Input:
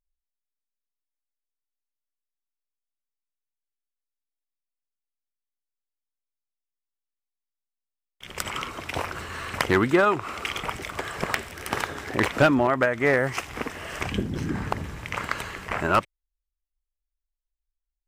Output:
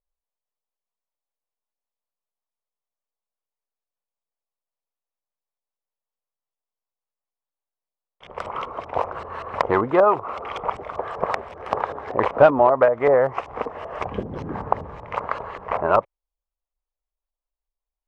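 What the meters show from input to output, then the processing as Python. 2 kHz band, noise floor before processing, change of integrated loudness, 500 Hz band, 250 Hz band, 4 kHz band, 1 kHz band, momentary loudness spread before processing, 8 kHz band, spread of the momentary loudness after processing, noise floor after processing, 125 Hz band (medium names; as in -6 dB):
-5.0 dB, under -85 dBFS, +3.5 dB, +7.0 dB, -3.0 dB, -9.5 dB, +5.5 dB, 13 LU, under -15 dB, 15 LU, under -85 dBFS, -4.0 dB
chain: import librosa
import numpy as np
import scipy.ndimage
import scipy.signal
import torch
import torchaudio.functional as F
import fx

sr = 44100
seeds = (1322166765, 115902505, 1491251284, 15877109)

y = fx.filter_lfo_lowpass(x, sr, shape='saw_up', hz=5.2, low_hz=610.0, high_hz=5000.0, q=0.74)
y = fx.band_shelf(y, sr, hz=720.0, db=12.5, octaves=1.7)
y = y * librosa.db_to_amplitude(-4.0)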